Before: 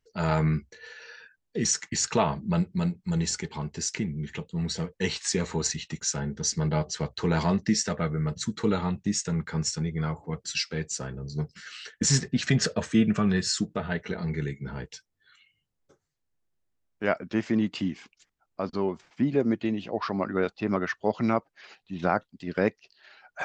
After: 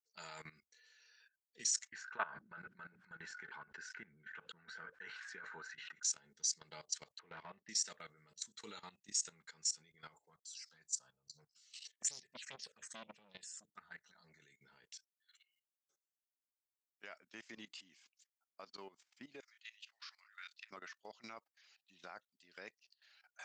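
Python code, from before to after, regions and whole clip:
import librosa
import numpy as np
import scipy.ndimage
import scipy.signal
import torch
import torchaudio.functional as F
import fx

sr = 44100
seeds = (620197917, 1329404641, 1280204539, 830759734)

y = fx.chain(x, sr, fx.lowpass_res(hz=1500.0, q=14.0),
    fx.sustainer(db_per_s=36.0), at=(1.92, 6.03))
y = fx.chain(y, sr, fx.lowpass(hz=2400.0, slope=24),
    fx.tube_stage(drive_db=18.0, bias=0.3), at=(7.19, 7.69))
y = fx.chain(y, sr, fx.env_phaser(low_hz=200.0, high_hz=1500.0, full_db=-19.5),
    fx.transformer_sat(knee_hz=700.0), at=(10.19, 14.4))
y = fx.chain(y, sr, fx.highpass(hz=1500.0, slope=24),
    fx.doubler(ms=27.0, db=-7), at=(19.4, 20.71))
y = np.diff(y, prepend=0.0)
y = fx.level_steps(y, sr, step_db=17)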